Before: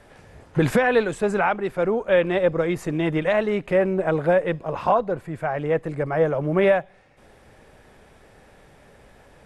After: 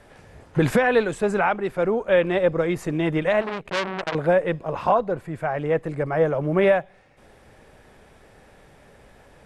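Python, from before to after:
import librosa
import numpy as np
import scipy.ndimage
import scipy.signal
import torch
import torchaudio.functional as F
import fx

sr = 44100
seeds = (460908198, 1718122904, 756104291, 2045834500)

y = fx.transformer_sat(x, sr, knee_hz=2800.0, at=(3.41, 4.15))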